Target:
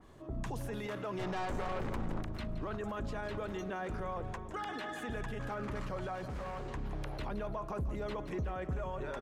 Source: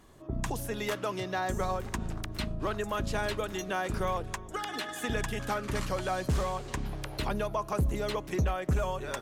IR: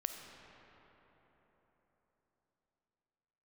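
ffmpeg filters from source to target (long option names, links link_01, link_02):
-filter_complex "[0:a]lowpass=frequency=3700:poles=1,alimiter=level_in=7.5dB:limit=-24dB:level=0:latency=1:release=17,volume=-7.5dB,asplit=3[link_01][link_02][link_03];[link_01]afade=type=out:start_time=1.18:duration=0.02[link_04];[link_02]aeval=exprs='0.0282*(cos(1*acos(clip(val(0)/0.0282,-1,1)))-cos(1*PI/2))+0.00631*(cos(4*acos(clip(val(0)/0.0282,-1,1)))-cos(4*PI/2))+0.00794*(cos(5*acos(clip(val(0)/0.0282,-1,1)))-cos(5*PI/2))':channel_layout=same,afade=type=in:start_time=1.18:duration=0.02,afade=type=out:start_time=2.21:duration=0.02[link_05];[link_03]afade=type=in:start_time=2.21:duration=0.02[link_06];[link_04][link_05][link_06]amix=inputs=3:normalize=0,asettb=1/sr,asplit=3[link_07][link_08][link_09];[link_07]atrim=end=6.154[link_10];[link_08]atrim=start=6.15:end=6.62,asetpts=PTS-STARTPTS,afade=type=in:duration=0.004:curve=qsin,afade=type=out:start_time=0.466:duration=0.004:curve=qsin,aeval=exprs='0.0168*(abs(mod(val(0)/0.0168+3,4)-2)-1)':channel_layout=same[link_11];[link_09]atrim=start=6.616[link_12];[link_10][link_11]acrossfade=duration=0.004:curve1=hsin:curve2=qsin[link_13];[link_13][link_12]acrossfade=duration=0.004:curve1=qsin:curve2=hsin,asplit=2[link_14][link_15];[link_15]aecho=0:1:169|338|507|676:0.224|0.0918|0.0376|0.0154[link_16];[link_14][link_16]amix=inputs=2:normalize=0,adynamicequalizer=threshold=0.00158:dfrequency=2400:dqfactor=0.7:tfrequency=2400:tqfactor=0.7:attack=5:release=100:ratio=0.375:range=3.5:mode=cutabove:tftype=highshelf"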